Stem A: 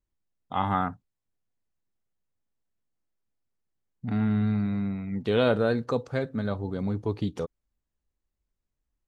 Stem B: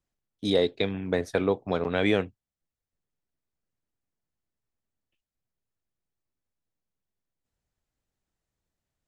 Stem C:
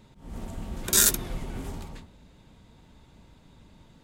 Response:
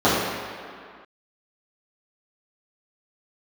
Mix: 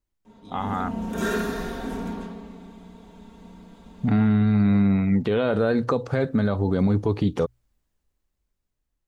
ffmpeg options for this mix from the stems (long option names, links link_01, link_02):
-filter_complex "[0:a]alimiter=limit=-18.5dB:level=0:latency=1:release=203,volume=2dB[link_01];[1:a]acrossover=split=140[link_02][link_03];[link_03]acompressor=threshold=-33dB:ratio=6[link_04];[link_02][link_04]amix=inputs=2:normalize=0,volume=-16dB,asplit=2[link_05][link_06];[2:a]aecho=1:1:4.4:0.77,adelay=250,volume=-10dB,asplit=2[link_07][link_08];[link_08]volume=-11.5dB[link_09];[link_06]apad=whole_len=189045[link_10];[link_07][link_10]sidechaincompress=threshold=-49dB:ratio=8:attack=16:release=581[link_11];[link_01][link_11]amix=inputs=2:normalize=0,dynaudnorm=framelen=300:gausssize=11:maxgain=10.5dB,alimiter=limit=-12dB:level=0:latency=1:release=77,volume=0dB[link_12];[3:a]atrim=start_sample=2205[link_13];[link_09][link_13]afir=irnorm=-1:irlink=0[link_14];[link_05][link_12][link_14]amix=inputs=3:normalize=0,bandreject=frequency=60:width_type=h:width=6,bandreject=frequency=120:width_type=h:width=6,acrossover=split=2900[link_15][link_16];[link_16]acompressor=threshold=-44dB:ratio=4:attack=1:release=60[link_17];[link_15][link_17]amix=inputs=2:normalize=0"